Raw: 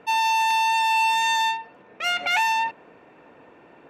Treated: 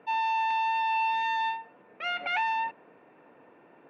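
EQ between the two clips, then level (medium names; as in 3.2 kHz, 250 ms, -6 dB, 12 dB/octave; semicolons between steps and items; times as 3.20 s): band-pass 130–2900 Hz; distance through air 71 m; -5.5 dB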